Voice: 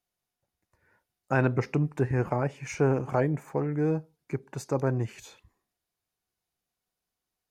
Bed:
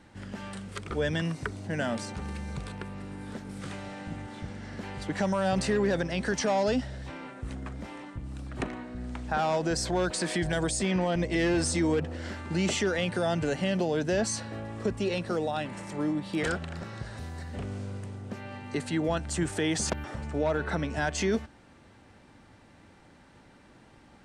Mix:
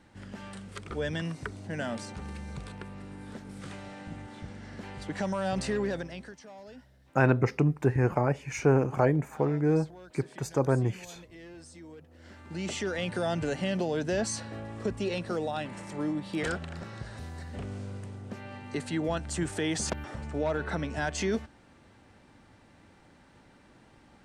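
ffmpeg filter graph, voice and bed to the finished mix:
ffmpeg -i stem1.wav -i stem2.wav -filter_complex "[0:a]adelay=5850,volume=1.5dB[link_01];[1:a]volume=16.5dB,afade=type=out:start_time=5.8:duration=0.56:silence=0.11885,afade=type=in:start_time=12.08:duration=1.12:silence=0.1[link_02];[link_01][link_02]amix=inputs=2:normalize=0" out.wav

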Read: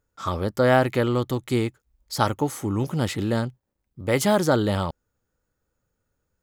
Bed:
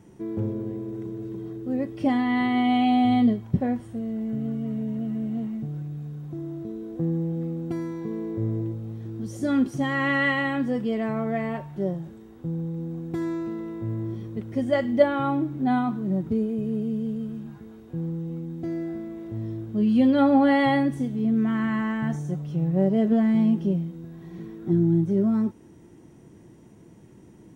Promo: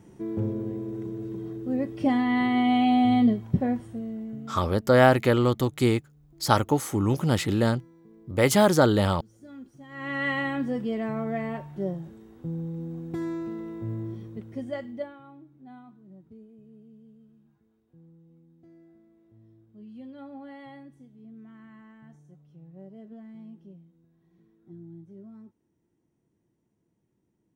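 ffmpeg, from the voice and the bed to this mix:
ffmpeg -i stem1.wav -i stem2.wav -filter_complex "[0:a]adelay=4300,volume=1dB[link_01];[1:a]volume=18.5dB,afade=type=out:start_time=3.72:duration=0.97:silence=0.0841395,afade=type=in:start_time=9.88:duration=0.49:silence=0.112202,afade=type=out:start_time=13.93:duration=1.27:silence=0.0841395[link_02];[link_01][link_02]amix=inputs=2:normalize=0" out.wav

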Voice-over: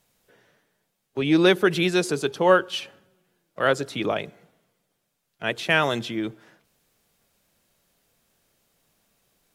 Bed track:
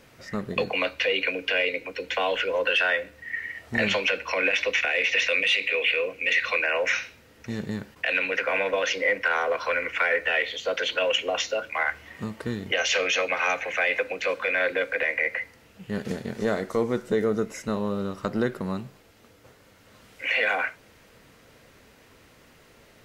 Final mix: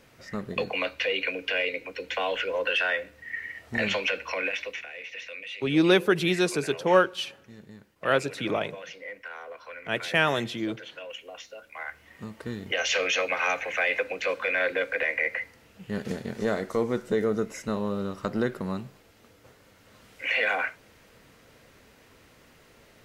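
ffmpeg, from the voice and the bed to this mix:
ffmpeg -i stem1.wav -i stem2.wav -filter_complex "[0:a]adelay=4450,volume=-2.5dB[link_01];[1:a]volume=12dB,afade=type=out:start_time=4.24:duration=0.62:silence=0.211349,afade=type=in:start_time=11.6:duration=1.41:silence=0.177828[link_02];[link_01][link_02]amix=inputs=2:normalize=0" out.wav

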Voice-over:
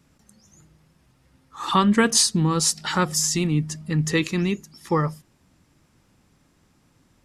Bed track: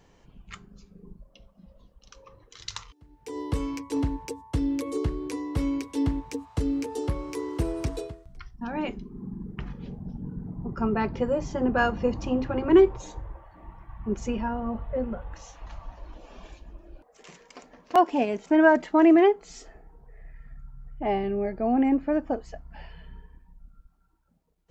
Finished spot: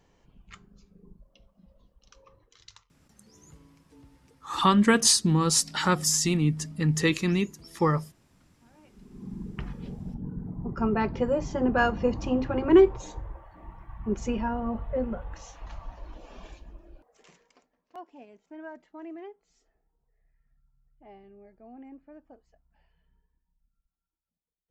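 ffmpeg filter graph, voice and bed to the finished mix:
ffmpeg -i stem1.wav -i stem2.wav -filter_complex "[0:a]adelay=2900,volume=-2dB[link_01];[1:a]volume=22.5dB,afade=type=out:start_time=2.27:duration=0.62:silence=0.0749894,afade=type=in:start_time=8.9:duration=0.5:silence=0.0398107,afade=type=out:start_time=16.47:duration=1.23:silence=0.0595662[link_02];[link_01][link_02]amix=inputs=2:normalize=0" out.wav

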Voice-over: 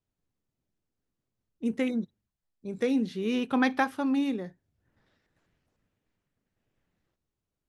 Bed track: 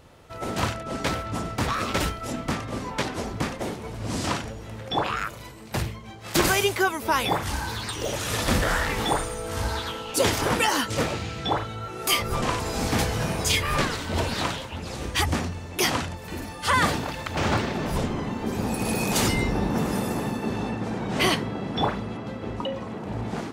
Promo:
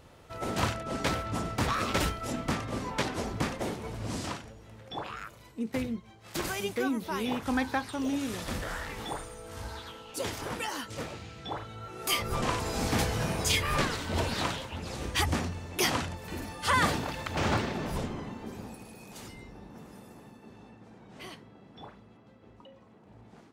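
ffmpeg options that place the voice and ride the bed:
ffmpeg -i stem1.wav -i stem2.wav -filter_complex "[0:a]adelay=3950,volume=-4.5dB[link_01];[1:a]volume=5.5dB,afade=type=out:start_time=3.94:duration=0.45:silence=0.334965,afade=type=in:start_time=11.47:duration=1:silence=0.375837,afade=type=out:start_time=17.5:duration=1.39:silence=0.112202[link_02];[link_01][link_02]amix=inputs=2:normalize=0" out.wav

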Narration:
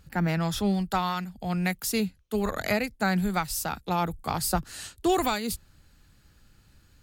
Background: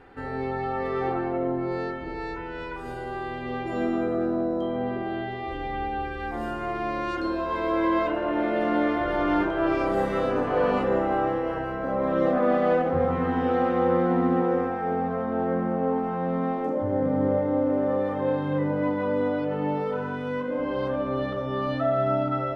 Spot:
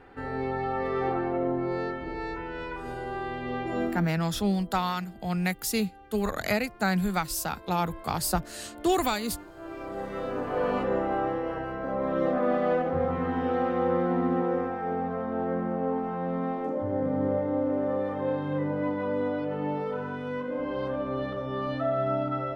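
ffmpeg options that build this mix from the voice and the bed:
ffmpeg -i stem1.wav -i stem2.wav -filter_complex "[0:a]adelay=3800,volume=-0.5dB[link_01];[1:a]volume=17dB,afade=type=out:start_time=3.79:duration=0.28:silence=0.0944061,afade=type=in:start_time=9.54:duration=1.26:silence=0.125893[link_02];[link_01][link_02]amix=inputs=2:normalize=0" out.wav

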